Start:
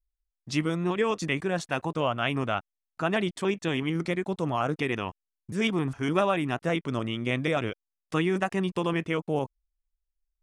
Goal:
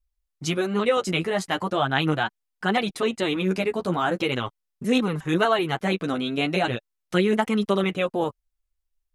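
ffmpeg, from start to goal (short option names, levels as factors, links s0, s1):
-af "flanger=delay=4.2:depth=9.8:regen=6:speed=0.35:shape=triangular,asetrate=50274,aresample=44100,volume=2.24"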